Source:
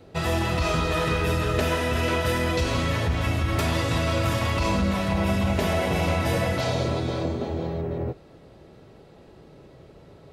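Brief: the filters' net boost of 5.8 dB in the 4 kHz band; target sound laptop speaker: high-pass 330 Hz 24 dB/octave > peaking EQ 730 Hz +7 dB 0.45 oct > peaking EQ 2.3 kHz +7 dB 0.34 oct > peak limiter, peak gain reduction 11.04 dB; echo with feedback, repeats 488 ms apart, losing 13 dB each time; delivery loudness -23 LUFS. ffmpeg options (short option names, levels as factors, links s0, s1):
-af "highpass=f=330:w=0.5412,highpass=f=330:w=1.3066,equalizer=f=730:t=o:w=0.45:g=7,equalizer=f=2300:t=o:w=0.34:g=7,equalizer=f=4000:t=o:g=6.5,aecho=1:1:488|976|1464:0.224|0.0493|0.0108,volume=2.11,alimiter=limit=0.178:level=0:latency=1"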